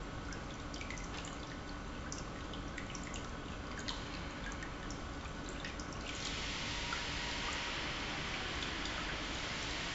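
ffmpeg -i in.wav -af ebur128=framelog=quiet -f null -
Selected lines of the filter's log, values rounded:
Integrated loudness:
  I:         -41.2 LUFS
  Threshold: -51.2 LUFS
Loudness range:
  LRA:         5.6 LU
  Threshold: -61.4 LUFS
  LRA low:   -44.2 LUFS
  LRA high:  -38.7 LUFS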